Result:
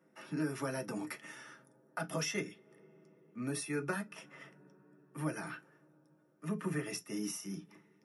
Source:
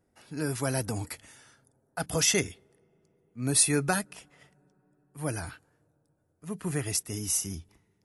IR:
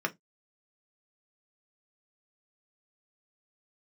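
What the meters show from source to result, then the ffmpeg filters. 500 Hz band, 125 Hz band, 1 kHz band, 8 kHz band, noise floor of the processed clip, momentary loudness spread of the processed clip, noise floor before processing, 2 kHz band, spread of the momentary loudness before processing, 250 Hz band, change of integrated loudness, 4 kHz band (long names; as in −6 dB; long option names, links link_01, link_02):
−7.0 dB, −9.5 dB, −7.0 dB, −17.0 dB, −69 dBFS, 17 LU, −73 dBFS, −6.5 dB, 19 LU, −4.5 dB, −11.0 dB, −12.5 dB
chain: -filter_complex "[0:a]lowshelf=frequency=95:gain=-10.5,acompressor=threshold=-43dB:ratio=3[link_01];[1:a]atrim=start_sample=2205[link_02];[link_01][link_02]afir=irnorm=-1:irlink=0,volume=-1dB"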